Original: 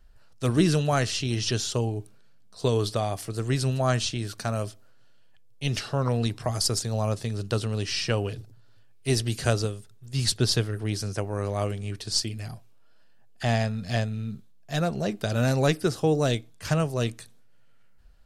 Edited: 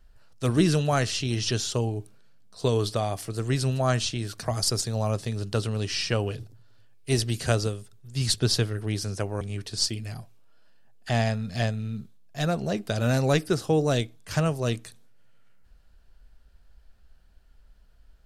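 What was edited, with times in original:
0:04.43–0:06.41: remove
0:11.39–0:11.75: remove

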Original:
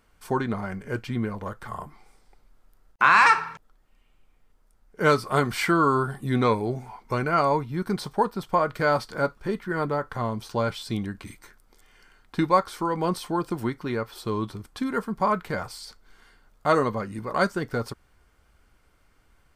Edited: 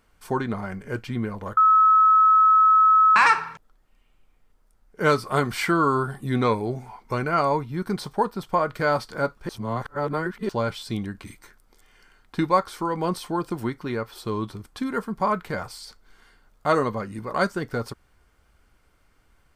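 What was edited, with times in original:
0:01.57–0:03.16: beep over 1,290 Hz −12.5 dBFS
0:09.49–0:10.49: reverse

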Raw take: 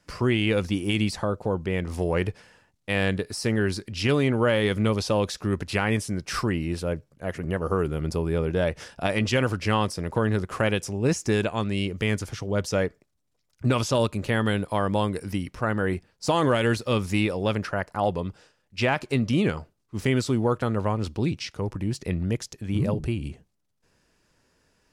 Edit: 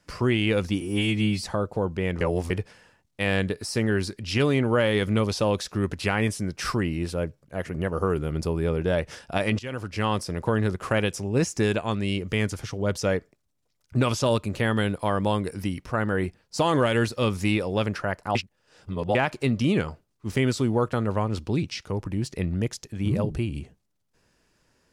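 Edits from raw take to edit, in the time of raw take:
0:00.81–0:01.12: time-stretch 2×
0:01.90–0:02.19: reverse
0:09.28–0:09.91: fade in, from −17 dB
0:18.04–0:18.84: reverse

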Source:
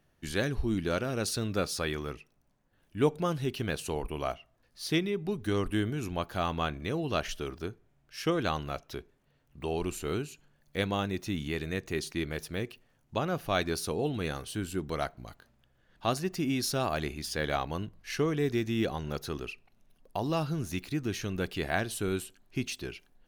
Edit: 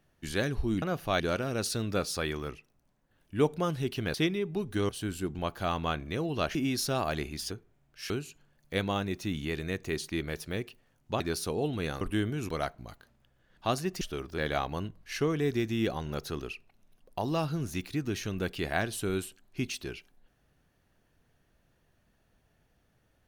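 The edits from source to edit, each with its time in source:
0:03.76–0:04.86: remove
0:05.61–0:06.09: swap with 0:14.42–0:14.88
0:07.29–0:07.66: swap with 0:16.40–0:17.36
0:08.25–0:10.13: remove
0:13.23–0:13.61: move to 0:00.82

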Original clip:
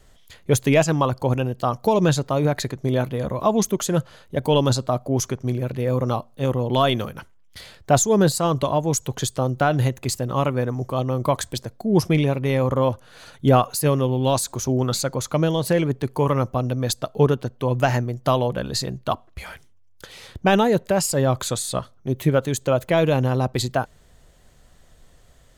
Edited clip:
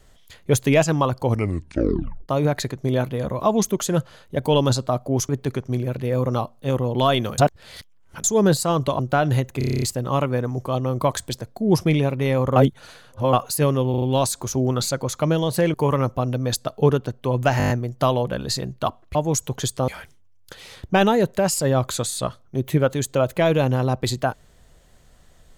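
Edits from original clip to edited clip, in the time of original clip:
0:01.23: tape stop 1.06 s
0:07.13–0:07.99: reverse
0:08.74–0:09.47: move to 0:19.40
0:10.06: stutter 0.03 s, 9 plays
0:12.80–0:13.57: reverse
0:14.14: stutter 0.04 s, 4 plays
0:15.86–0:16.11: move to 0:05.29
0:17.95: stutter 0.02 s, 7 plays

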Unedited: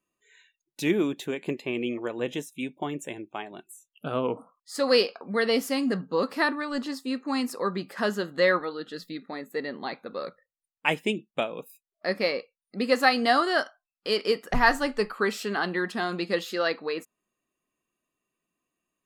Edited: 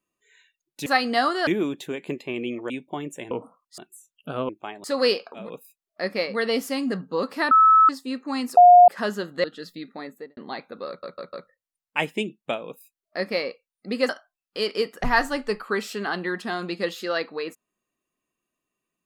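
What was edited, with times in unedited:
0:02.09–0:02.59: remove
0:03.20–0:03.55: swap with 0:04.26–0:04.73
0:06.51–0:06.89: beep over 1,300 Hz −11 dBFS
0:07.57–0:07.88: beep over 713 Hz −7 dBFS
0:08.44–0:08.78: remove
0:09.41–0:09.71: fade out and dull
0:10.22: stutter 0.15 s, 4 plays
0:11.47–0:12.36: duplicate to 0:05.31, crossfade 0.16 s
0:12.98–0:13.59: move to 0:00.86

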